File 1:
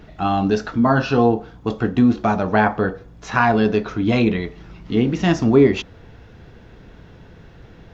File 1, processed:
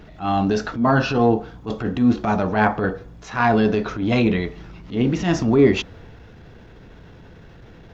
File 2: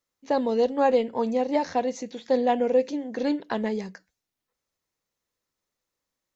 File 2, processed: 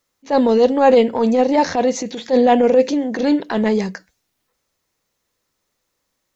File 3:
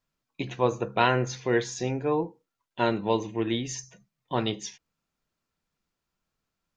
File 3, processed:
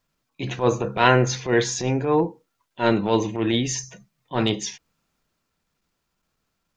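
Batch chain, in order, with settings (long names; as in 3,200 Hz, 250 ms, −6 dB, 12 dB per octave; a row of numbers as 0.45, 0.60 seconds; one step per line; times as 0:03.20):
transient designer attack −10 dB, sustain +2 dB
normalise the peak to −2 dBFS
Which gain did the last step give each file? +0.5, +11.5, +7.5 decibels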